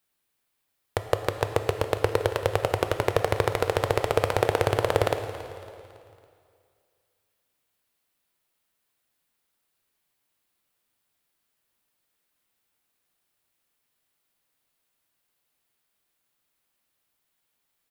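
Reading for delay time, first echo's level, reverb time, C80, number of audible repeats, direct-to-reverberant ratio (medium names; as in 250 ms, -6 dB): 278 ms, -16.5 dB, 2.3 s, 8.5 dB, 3, 7.0 dB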